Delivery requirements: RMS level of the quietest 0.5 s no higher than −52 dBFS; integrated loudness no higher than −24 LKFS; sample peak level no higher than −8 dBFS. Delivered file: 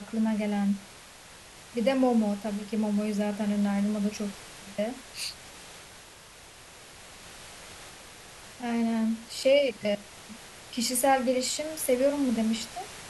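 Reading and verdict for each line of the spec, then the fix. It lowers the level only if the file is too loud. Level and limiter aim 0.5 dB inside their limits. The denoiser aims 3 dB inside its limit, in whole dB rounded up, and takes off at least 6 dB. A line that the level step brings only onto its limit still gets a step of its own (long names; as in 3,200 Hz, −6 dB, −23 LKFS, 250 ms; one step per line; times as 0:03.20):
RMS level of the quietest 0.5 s −50 dBFS: out of spec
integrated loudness −28.5 LKFS: in spec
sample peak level −13.0 dBFS: in spec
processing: broadband denoise 6 dB, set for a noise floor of −50 dBFS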